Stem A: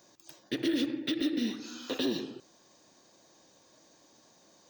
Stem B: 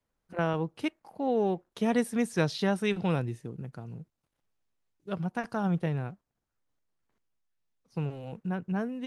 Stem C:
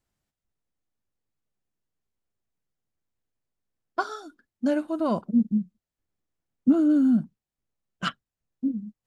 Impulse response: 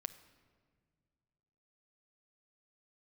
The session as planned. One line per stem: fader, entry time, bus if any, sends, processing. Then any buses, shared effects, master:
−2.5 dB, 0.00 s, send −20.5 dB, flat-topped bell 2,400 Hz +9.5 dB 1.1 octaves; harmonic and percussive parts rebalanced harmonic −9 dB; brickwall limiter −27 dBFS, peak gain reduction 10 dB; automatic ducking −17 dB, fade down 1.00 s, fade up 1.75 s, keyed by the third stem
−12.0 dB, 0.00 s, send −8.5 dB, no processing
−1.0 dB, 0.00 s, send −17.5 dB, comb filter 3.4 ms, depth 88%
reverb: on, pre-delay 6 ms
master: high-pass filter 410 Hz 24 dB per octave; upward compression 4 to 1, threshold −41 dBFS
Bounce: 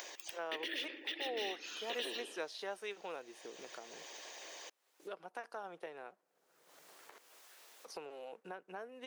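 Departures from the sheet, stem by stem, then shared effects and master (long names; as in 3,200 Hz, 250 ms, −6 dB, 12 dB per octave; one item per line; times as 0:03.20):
stem B: send −8.5 dB → −16 dB
stem C: muted
reverb return −8.0 dB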